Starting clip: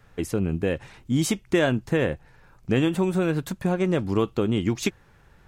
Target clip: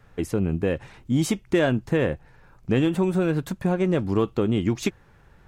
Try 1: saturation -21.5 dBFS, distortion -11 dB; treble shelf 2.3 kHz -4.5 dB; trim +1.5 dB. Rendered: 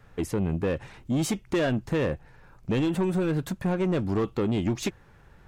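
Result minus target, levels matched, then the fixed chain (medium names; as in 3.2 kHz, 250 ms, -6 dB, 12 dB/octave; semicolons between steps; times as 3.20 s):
saturation: distortion +15 dB
saturation -10 dBFS, distortion -26 dB; treble shelf 2.3 kHz -4.5 dB; trim +1.5 dB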